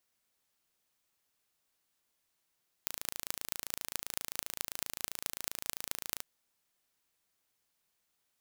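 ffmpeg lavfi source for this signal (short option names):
-f lavfi -i "aevalsrc='0.562*eq(mod(n,1598),0)*(0.5+0.5*eq(mod(n,9588),0))':d=3.36:s=44100"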